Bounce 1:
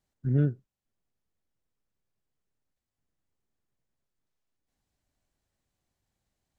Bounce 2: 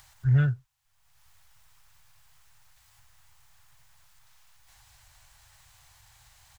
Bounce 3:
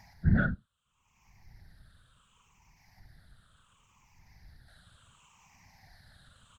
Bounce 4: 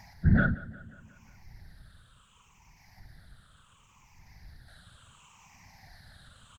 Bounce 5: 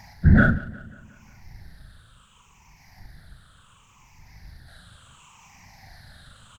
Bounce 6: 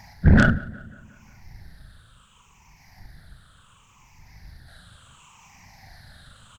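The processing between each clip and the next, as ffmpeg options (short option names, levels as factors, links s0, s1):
-filter_complex "[0:a]firequalizer=gain_entry='entry(130,0);entry(200,-28);entry(860,5)':delay=0.05:min_phase=1,asplit=2[s0][s1];[s1]acompressor=mode=upward:threshold=0.00708:ratio=2.5,volume=1.12[s2];[s0][s2]amix=inputs=2:normalize=0,volume=1.12"
-af "afftfilt=real='re*pow(10,19/40*sin(2*PI*(0.74*log(max(b,1)*sr/1024/100)/log(2)-(-0.7)*(pts-256)/sr)))':imag='im*pow(10,19/40*sin(2*PI*(0.74*log(max(b,1)*sr/1024/100)/log(2)-(-0.7)*(pts-256)/sr)))':win_size=1024:overlap=0.75,afftfilt=real='hypot(re,im)*cos(2*PI*random(0))':imag='hypot(re,im)*sin(2*PI*random(1))':win_size=512:overlap=0.75,aemphasis=mode=reproduction:type=50fm,volume=1.41"
-filter_complex "[0:a]asplit=2[s0][s1];[s1]alimiter=limit=0.0944:level=0:latency=1,volume=1.12[s2];[s0][s2]amix=inputs=2:normalize=0,aecho=1:1:179|358|537|716|895:0.119|0.0666|0.0373|0.0209|0.0117,volume=0.794"
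-filter_complex "[0:a]asplit=2[s0][s1];[s1]aeval=exprs='sgn(val(0))*max(abs(val(0))-0.00562,0)':c=same,volume=0.398[s2];[s0][s2]amix=inputs=2:normalize=0,asplit=2[s3][s4];[s4]adelay=39,volume=0.501[s5];[s3][s5]amix=inputs=2:normalize=0,volume=1.68"
-af "aeval=exprs='0.631*(cos(1*acos(clip(val(0)/0.631,-1,1)))-cos(1*PI/2))+0.1*(cos(6*acos(clip(val(0)/0.631,-1,1)))-cos(6*PI/2))+0.0562*(cos(8*acos(clip(val(0)/0.631,-1,1)))-cos(8*PI/2))':c=same"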